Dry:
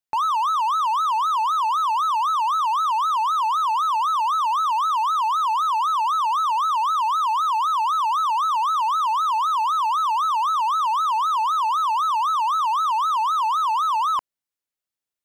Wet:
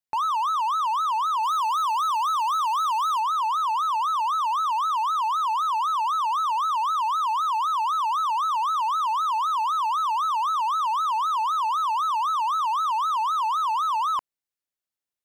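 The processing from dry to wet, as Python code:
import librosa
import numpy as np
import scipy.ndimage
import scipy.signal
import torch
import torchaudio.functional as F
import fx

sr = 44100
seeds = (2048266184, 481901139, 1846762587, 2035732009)

y = fx.high_shelf(x, sr, hz=4500.0, db=7.0, at=(1.43, 3.2))
y = y * librosa.db_to_amplitude(-3.0)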